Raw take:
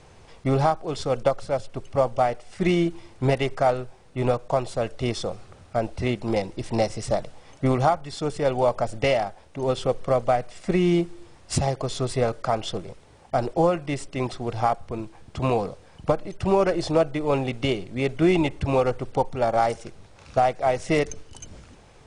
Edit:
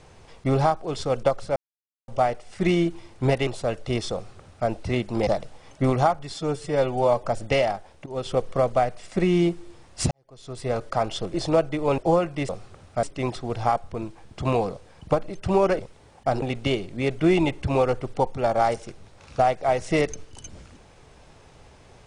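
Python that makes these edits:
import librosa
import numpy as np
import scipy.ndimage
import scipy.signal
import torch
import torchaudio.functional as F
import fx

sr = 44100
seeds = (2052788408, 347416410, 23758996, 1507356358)

y = fx.edit(x, sr, fx.silence(start_s=1.56, length_s=0.52),
    fx.cut(start_s=3.47, length_s=1.13),
    fx.duplicate(start_s=5.27, length_s=0.54, to_s=14.0),
    fx.cut(start_s=6.4, length_s=0.69),
    fx.stretch_span(start_s=8.16, length_s=0.6, factor=1.5),
    fx.fade_in_from(start_s=9.58, length_s=0.29, floor_db=-16.0),
    fx.fade_in_span(start_s=11.63, length_s=0.73, curve='qua'),
    fx.swap(start_s=12.86, length_s=0.63, other_s=16.76, other_length_s=0.64), tone=tone)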